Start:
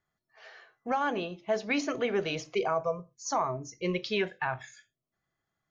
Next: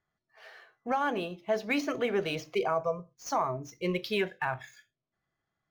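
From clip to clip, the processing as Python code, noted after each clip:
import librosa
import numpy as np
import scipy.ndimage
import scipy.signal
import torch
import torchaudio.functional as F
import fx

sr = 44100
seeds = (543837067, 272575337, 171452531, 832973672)

y = scipy.signal.medfilt(x, 5)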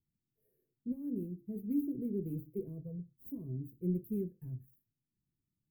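y = scipy.signal.sosfilt(scipy.signal.cheby2(4, 50, [710.0, 6300.0], 'bandstop', fs=sr, output='sos'), x)
y = F.gain(torch.from_numpy(y), 1.5).numpy()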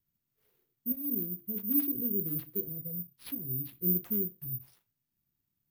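y = (np.kron(x[::3], np.eye(3)[0]) * 3)[:len(x)]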